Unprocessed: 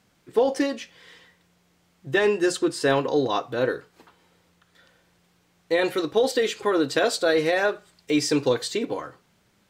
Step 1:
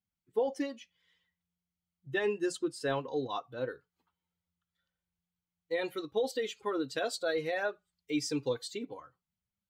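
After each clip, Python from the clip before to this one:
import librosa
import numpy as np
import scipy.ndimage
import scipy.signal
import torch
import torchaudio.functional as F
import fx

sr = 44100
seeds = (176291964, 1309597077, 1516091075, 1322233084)

y = fx.bin_expand(x, sr, power=1.5)
y = F.gain(torch.from_numpy(y), -8.5).numpy()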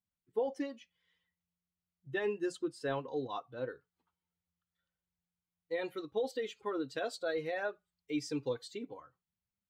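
y = fx.high_shelf(x, sr, hz=3900.0, db=-7.0)
y = F.gain(torch.from_numpy(y), -3.0).numpy()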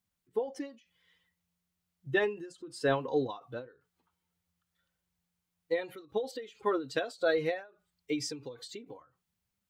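y = fx.end_taper(x, sr, db_per_s=150.0)
y = F.gain(torch.from_numpy(y), 8.0).numpy()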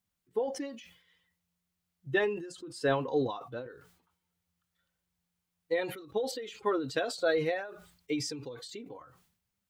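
y = fx.sustainer(x, sr, db_per_s=84.0)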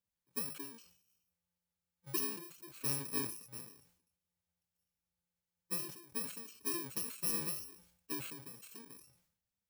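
y = fx.bit_reversed(x, sr, seeds[0], block=64)
y = F.gain(torch.from_numpy(y), -8.5).numpy()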